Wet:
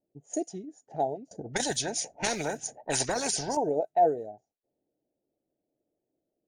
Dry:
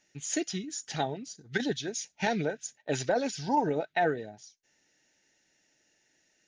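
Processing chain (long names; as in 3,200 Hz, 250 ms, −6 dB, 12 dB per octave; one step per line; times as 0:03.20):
low-shelf EQ 180 Hz −8 dB
low-pass that shuts in the quiet parts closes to 360 Hz, open at −28 dBFS
drawn EQ curve 120 Hz 0 dB, 180 Hz −3 dB, 720 Hz +7 dB, 1,200 Hz −18 dB, 3,600 Hz −22 dB, 5,500 Hz −10 dB, 8,500 Hz +10 dB
0:01.31–0:03.57: every bin compressed towards the loudest bin 4 to 1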